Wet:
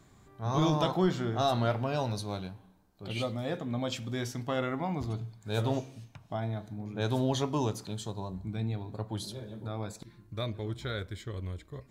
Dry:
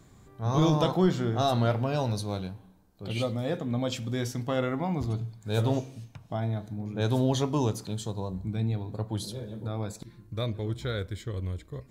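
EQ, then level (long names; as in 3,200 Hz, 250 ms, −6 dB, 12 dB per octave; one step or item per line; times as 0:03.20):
low-shelf EQ 430 Hz −5 dB
high-shelf EQ 5,200 Hz −4.5 dB
notch filter 490 Hz, Q 12
0.0 dB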